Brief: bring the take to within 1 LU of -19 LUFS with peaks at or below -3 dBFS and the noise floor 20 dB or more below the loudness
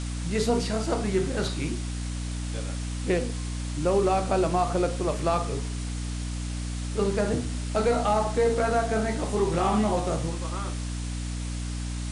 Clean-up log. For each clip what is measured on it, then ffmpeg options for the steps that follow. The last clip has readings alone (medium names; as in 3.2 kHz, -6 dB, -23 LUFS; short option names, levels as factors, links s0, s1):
hum 60 Hz; highest harmonic 300 Hz; hum level -29 dBFS; noise floor -32 dBFS; noise floor target -48 dBFS; loudness -27.5 LUFS; peak level -11.5 dBFS; loudness target -19.0 LUFS
-> -af "bandreject=f=60:t=h:w=6,bandreject=f=120:t=h:w=6,bandreject=f=180:t=h:w=6,bandreject=f=240:t=h:w=6,bandreject=f=300:t=h:w=6"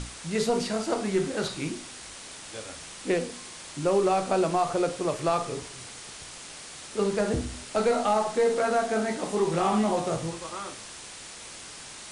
hum not found; noise floor -43 dBFS; noise floor target -48 dBFS
-> -af "afftdn=nr=6:nf=-43"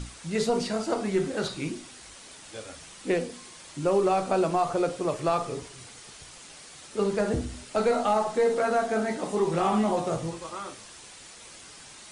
noise floor -48 dBFS; loudness -27.5 LUFS; peak level -13.0 dBFS; loudness target -19.0 LUFS
-> -af "volume=2.66"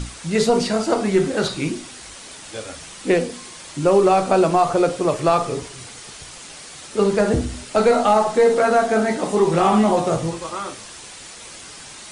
loudness -19.0 LUFS; peak level -4.5 dBFS; noise floor -39 dBFS